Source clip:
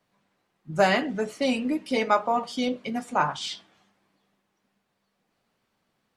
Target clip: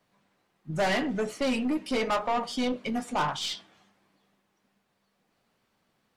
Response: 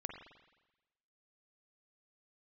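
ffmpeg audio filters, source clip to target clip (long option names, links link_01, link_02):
-af "aeval=exprs='0.447*(cos(1*acos(clip(val(0)/0.447,-1,1)))-cos(1*PI/2))+0.0501*(cos(6*acos(clip(val(0)/0.447,-1,1)))-cos(6*PI/2))':channel_layout=same,asoftclip=type=tanh:threshold=-23dB,volume=1.5dB"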